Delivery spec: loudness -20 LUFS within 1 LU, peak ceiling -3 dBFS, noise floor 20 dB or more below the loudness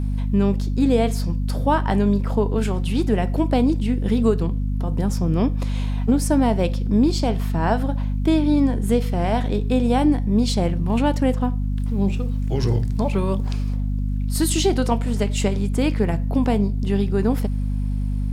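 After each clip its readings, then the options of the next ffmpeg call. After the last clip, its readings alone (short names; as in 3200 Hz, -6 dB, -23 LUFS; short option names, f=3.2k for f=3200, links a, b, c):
hum 50 Hz; harmonics up to 250 Hz; hum level -20 dBFS; loudness -21.5 LUFS; peak -5.5 dBFS; loudness target -20.0 LUFS
-> -af "bandreject=f=50:t=h:w=6,bandreject=f=100:t=h:w=6,bandreject=f=150:t=h:w=6,bandreject=f=200:t=h:w=6,bandreject=f=250:t=h:w=6"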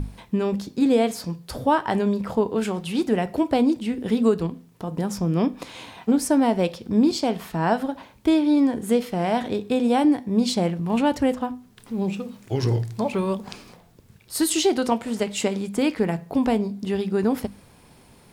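hum none; loudness -23.5 LUFS; peak -8.0 dBFS; loudness target -20.0 LUFS
-> -af "volume=3.5dB"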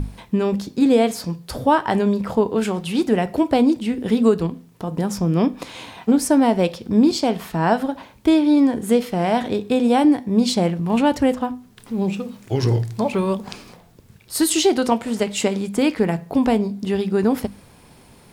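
loudness -20.0 LUFS; peak -4.5 dBFS; noise floor -49 dBFS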